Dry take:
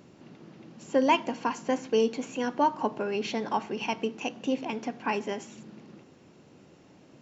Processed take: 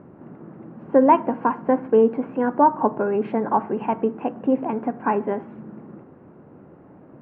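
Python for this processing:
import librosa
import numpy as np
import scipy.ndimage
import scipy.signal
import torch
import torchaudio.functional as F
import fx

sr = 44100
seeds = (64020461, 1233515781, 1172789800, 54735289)

y = scipy.signal.sosfilt(scipy.signal.butter(4, 1500.0, 'lowpass', fs=sr, output='sos'), x)
y = F.gain(torch.from_numpy(y), 8.5).numpy()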